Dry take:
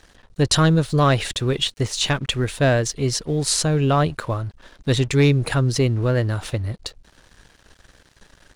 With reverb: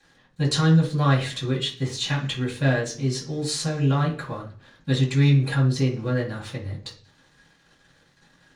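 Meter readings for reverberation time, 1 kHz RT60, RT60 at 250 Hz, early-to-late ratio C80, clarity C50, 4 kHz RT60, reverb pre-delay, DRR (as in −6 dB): 0.40 s, 0.40 s, 0.55 s, 14.0 dB, 9.0 dB, 0.50 s, 3 ms, −12.5 dB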